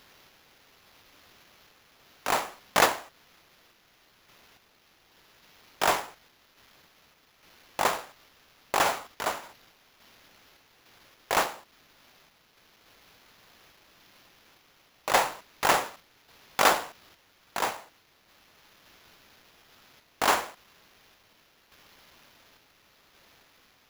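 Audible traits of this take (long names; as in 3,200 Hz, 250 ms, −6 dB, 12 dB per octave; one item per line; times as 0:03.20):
a quantiser's noise floor 10 bits, dither triangular
sample-and-hold tremolo
aliases and images of a low sample rate 8,500 Hz, jitter 0%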